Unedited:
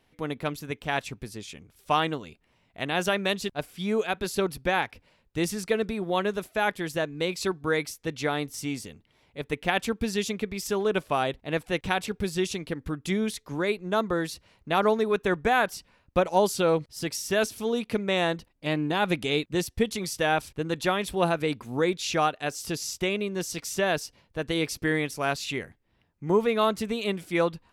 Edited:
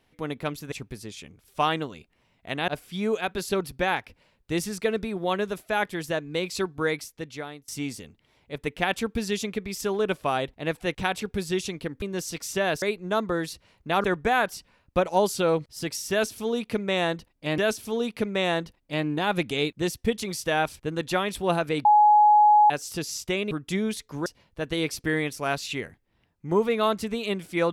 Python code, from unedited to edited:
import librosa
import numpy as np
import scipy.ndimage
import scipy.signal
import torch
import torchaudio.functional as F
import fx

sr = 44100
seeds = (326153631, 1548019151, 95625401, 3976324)

y = fx.edit(x, sr, fx.cut(start_s=0.72, length_s=0.31),
    fx.cut(start_s=2.99, length_s=0.55),
    fx.fade_out_to(start_s=7.73, length_s=0.81, floor_db=-21.5),
    fx.swap(start_s=12.88, length_s=0.75, other_s=23.24, other_length_s=0.8),
    fx.cut(start_s=14.85, length_s=0.39),
    fx.repeat(start_s=17.31, length_s=1.47, count=2),
    fx.bleep(start_s=21.58, length_s=0.85, hz=840.0, db=-13.0), tone=tone)